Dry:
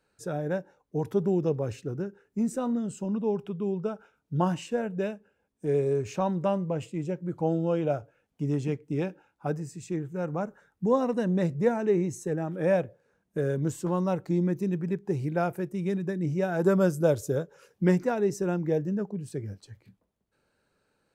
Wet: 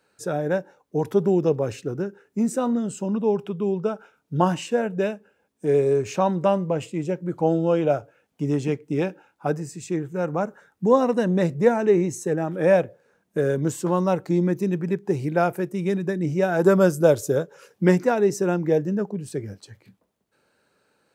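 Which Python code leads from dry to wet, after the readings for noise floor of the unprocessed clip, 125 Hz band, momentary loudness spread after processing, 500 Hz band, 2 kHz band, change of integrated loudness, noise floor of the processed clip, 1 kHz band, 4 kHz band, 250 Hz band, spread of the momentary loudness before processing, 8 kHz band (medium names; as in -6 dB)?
-76 dBFS, +3.0 dB, 10 LU, +6.5 dB, +7.5 dB, +5.5 dB, -70 dBFS, +7.0 dB, +7.5 dB, +4.5 dB, 10 LU, +7.5 dB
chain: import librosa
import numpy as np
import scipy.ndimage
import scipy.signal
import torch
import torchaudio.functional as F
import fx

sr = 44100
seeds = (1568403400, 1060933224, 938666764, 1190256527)

y = fx.highpass(x, sr, hz=210.0, slope=6)
y = F.gain(torch.from_numpy(y), 7.5).numpy()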